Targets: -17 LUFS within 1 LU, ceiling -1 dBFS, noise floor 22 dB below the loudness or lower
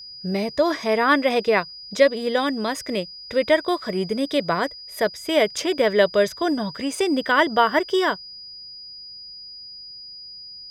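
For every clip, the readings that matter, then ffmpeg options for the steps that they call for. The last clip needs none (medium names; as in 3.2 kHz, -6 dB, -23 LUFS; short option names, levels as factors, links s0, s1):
steady tone 4.9 kHz; tone level -37 dBFS; loudness -21.5 LUFS; peak level -3.5 dBFS; loudness target -17.0 LUFS
-> -af "bandreject=f=4900:w=30"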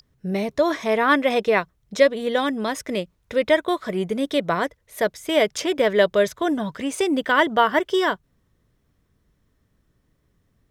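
steady tone not found; loudness -22.0 LUFS; peak level -3.5 dBFS; loudness target -17.0 LUFS
-> -af "volume=1.78,alimiter=limit=0.891:level=0:latency=1"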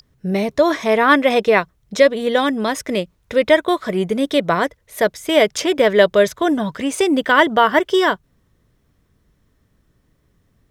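loudness -17.0 LUFS; peak level -1.0 dBFS; noise floor -63 dBFS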